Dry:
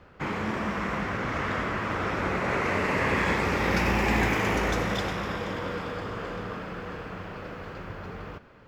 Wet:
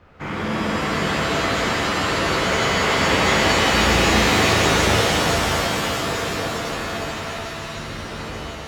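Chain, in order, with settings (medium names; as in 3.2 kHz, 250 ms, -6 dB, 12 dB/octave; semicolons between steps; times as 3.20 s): 7.09–7.75 s: Chebyshev band-stop 110–1200 Hz, order 2; pitch-shifted reverb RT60 3 s, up +7 st, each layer -2 dB, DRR -4.5 dB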